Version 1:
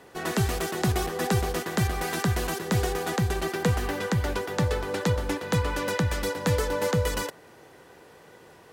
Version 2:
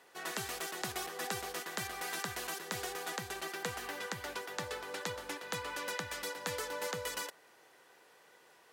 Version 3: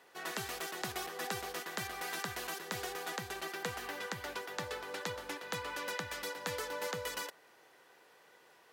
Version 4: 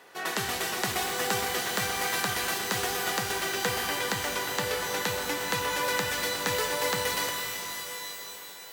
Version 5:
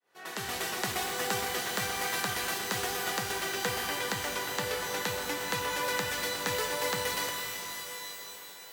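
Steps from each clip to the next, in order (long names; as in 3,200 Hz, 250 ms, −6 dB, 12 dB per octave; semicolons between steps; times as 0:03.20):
high-pass filter 1,100 Hz 6 dB per octave; level −6 dB
parametric band 8,600 Hz −3.5 dB 1 octave
reverb with rising layers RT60 3.2 s, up +12 semitones, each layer −2 dB, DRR 4 dB; level +8.5 dB
fade in at the beginning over 0.58 s; level −3 dB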